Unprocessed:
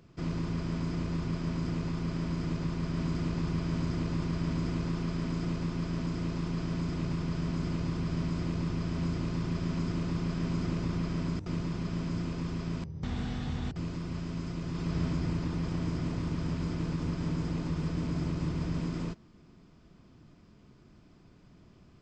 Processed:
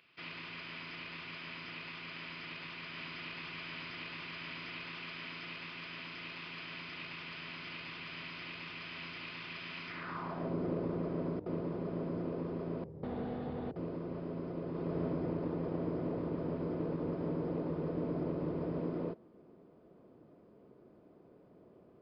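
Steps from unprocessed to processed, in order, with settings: band-pass sweep 2.6 kHz -> 500 Hz, 9.84–10.54 s; resampled via 11.025 kHz; trim +9 dB

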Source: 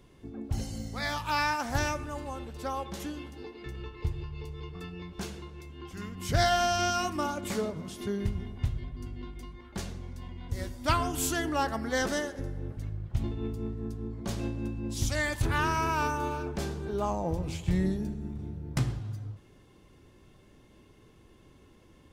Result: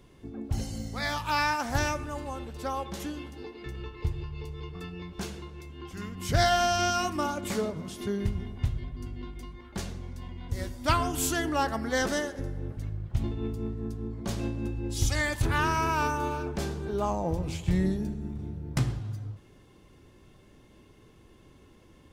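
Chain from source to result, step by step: 14.66–15.21 s: comb 2.4 ms, depth 54%; trim +1.5 dB

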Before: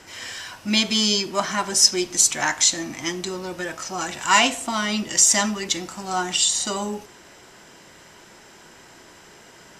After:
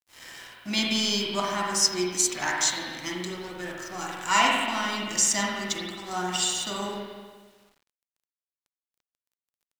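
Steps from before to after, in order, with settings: crossover distortion -38 dBFS; spring tank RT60 1.5 s, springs 44/50 ms, chirp 45 ms, DRR -2 dB; bit crusher 9-bit; trim -6.5 dB

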